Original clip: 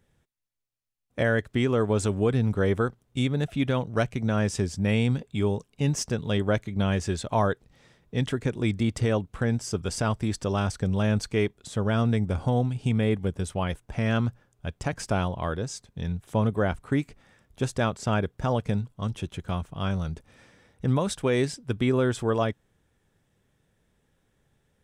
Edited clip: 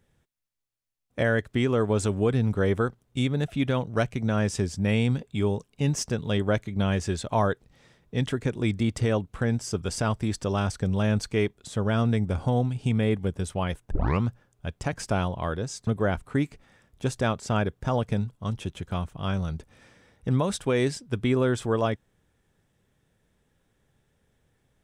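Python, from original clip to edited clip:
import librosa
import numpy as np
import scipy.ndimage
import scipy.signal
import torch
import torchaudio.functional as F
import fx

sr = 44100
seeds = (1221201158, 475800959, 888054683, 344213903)

y = fx.edit(x, sr, fx.tape_start(start_s=13.91, length_s=0.31),
    fx.cut(start_s=15.87, length_s=0.57), tone=tone)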